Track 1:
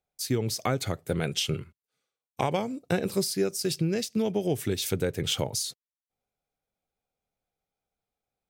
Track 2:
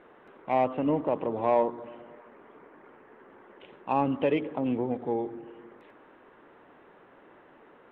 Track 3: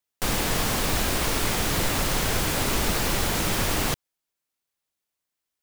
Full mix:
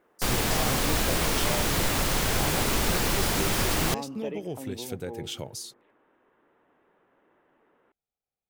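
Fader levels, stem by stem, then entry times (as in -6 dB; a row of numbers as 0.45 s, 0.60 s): -8.0 dB, -11.0 dB, -1.0 dB; 0.00 s, 0.00 s, 0.00 s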